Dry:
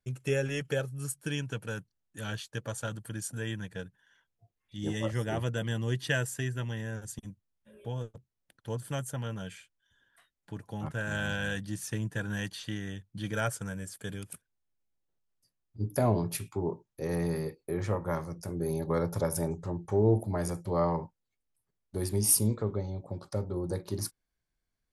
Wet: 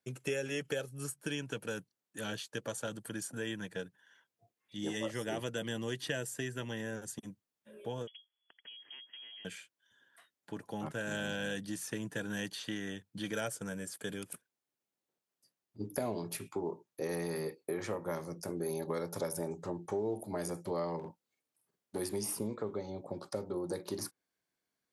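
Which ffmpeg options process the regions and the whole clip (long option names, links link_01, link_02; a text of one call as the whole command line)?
ffmpeg -i in.wav -filter_complex "[0:a]asettb=1/sr,asplit=3[link_01][link_02][link_03];[link_01]atrim=end=8.074[link_04];[link_02]atrim=start=8.07:end=9.45,asetpts=PTS-STARTPTS,afade=type=in:duration=0.004:curve=qsin,afade=type=out:start_time=1.376:duration=0.004:curve=qsin,acompressor=threshold=-48dB:ratio=16:attack=3.2:release=140:knee=1:detection=peak,lowpass=frequency=2900:width_type=q:width=0.5098,lowpass=frequency=2900:width_type=q:width=0.6013,lowpass=frequency=2900:width_type=q:width=0.9,lowpass=frequency=2900:width_type=q:width=2.563,afreqshift=-3400[link_05];[link_03]atrim=start=9.446[link_06];[link_04][link_05]acrossfade=duration=0.004:curve1=hsin:curve2=qsin[link_07];[link_07][link_06]acrossfade=duration=0.004:curve1=qsin:curve2=hsin,asettb=1/sr,asplit=3[link_08][link_09][link_10];[link_08]atrim=end=20.994[link_11];[link_09]atrim=start=20.99:end=21.99,asetpts=PTS-STARTPTS,afade=type=in:duration=0.004:curve=qsin,afade=type=out:start_time=0.996:duration=0.004:curve=qsin,aeval=exprs='clip(val(0),-1,0.0178)':channel_layout=same,asplit=2[link_12][link_13];[link_13]adelay=48,volume=-3dB[link_14];[link_12][link_14]amix=inputs=2:normalize=0,atrim=end_sample=44100[link_15];[link_10]atrim=start=21.986[link_16];[link_11][link_15]acrossfade=duration=0.004:curve1=hsin:curve2=qsin[link_17];[link_17][link_16]acrossfade=duration=0.004:curve1=qsin:curve2=hsin,highpass=280,lowshelf=frequency=360:gain=5.5,acrossover=split=700|2200[link_18][link_19][link_20];[link_18]acompressor=threshold=-37dB:ratio=4[link_21];[link_19]acompressor=threshold=-48dB:ratio=4[link_22];[link_20]acompressor=threshold=-42dB:ratio=4[link_23];[link_21][link_22][link_23]amix=inputs=3:normalize=0,volume=1.5dB" out.wav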